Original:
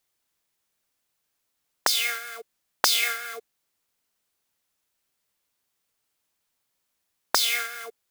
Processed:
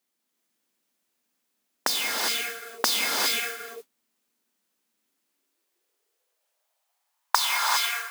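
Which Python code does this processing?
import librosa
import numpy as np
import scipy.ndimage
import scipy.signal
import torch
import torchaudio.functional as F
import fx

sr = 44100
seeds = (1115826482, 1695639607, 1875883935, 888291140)

y = fx.rev_gated(x, sr, seeds[0], gate_ms=430, shape='rising', drr_db=-1.0)
y = fx.mod_noise(y, sr, seeds[1], snr_db=12)
y = fx.filter_sweep_highpass(y, sr, from_hz=230.0, to_hz=980.0, start_s=5.06, end_s=7.36, q=3.8)
y = y * librosa.db_to_amplitude(-3.5)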